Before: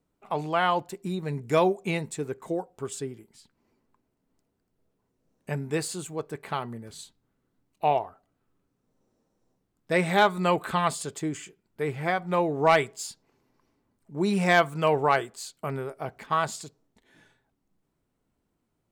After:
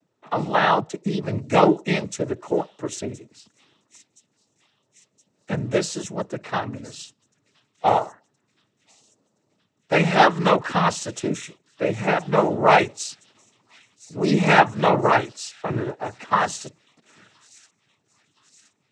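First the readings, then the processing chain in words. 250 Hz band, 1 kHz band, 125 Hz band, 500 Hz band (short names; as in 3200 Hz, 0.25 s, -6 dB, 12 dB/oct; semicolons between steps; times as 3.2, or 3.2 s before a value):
+6.0 dB, +6.0 dB, +5.5 dB, +4.5 dB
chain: thin delay 1.02 s, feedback 58%, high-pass 5200 Hz, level -15.5 dB; noise vocoder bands 12; gain +6 dB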